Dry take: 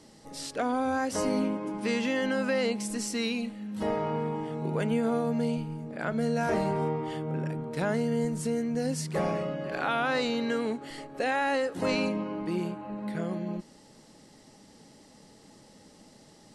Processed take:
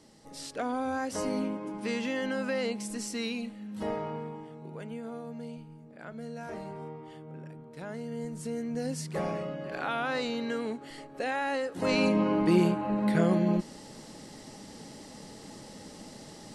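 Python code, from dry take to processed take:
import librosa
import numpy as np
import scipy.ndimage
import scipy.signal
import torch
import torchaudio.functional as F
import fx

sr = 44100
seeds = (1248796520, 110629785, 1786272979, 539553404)

y = fx.gain(x, sr, db=fx.line((3.92, -3.5), (4.62, -12.5), (7.78, -12.5), (8.73, -3.5), (11.71, -3.5), (12.27, 8.0)))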